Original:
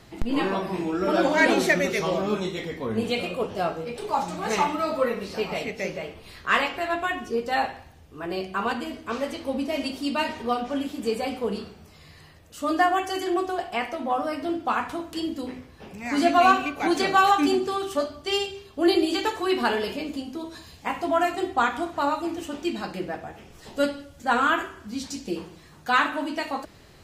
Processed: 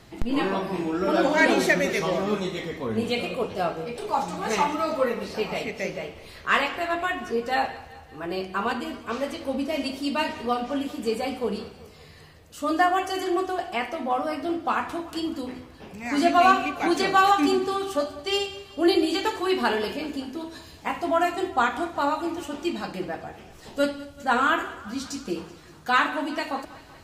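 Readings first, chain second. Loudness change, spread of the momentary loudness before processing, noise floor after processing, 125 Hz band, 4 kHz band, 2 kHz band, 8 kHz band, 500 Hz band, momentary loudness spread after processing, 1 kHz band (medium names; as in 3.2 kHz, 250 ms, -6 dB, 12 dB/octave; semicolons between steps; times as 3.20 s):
0.0 dB, 13 LU, -48 dBFS, 0.0 dB, 0.0 dB, 0.0 dB, 0.0 dB, 0.0 dB, 13 LU, 0.0 dB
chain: thinning echo 191 ms, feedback 61%, high-pass 190 Hz, level -18 dB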